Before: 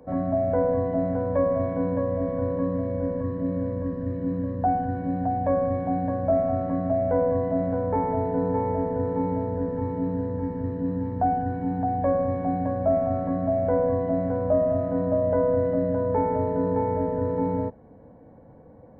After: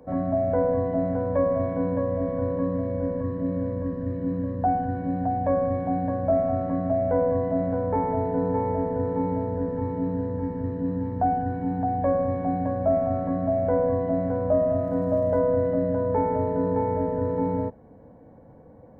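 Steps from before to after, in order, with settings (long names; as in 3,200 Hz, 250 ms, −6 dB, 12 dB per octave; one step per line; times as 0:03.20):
0:14.83–0:15.39: surface crackle 150 per second −49 dBFS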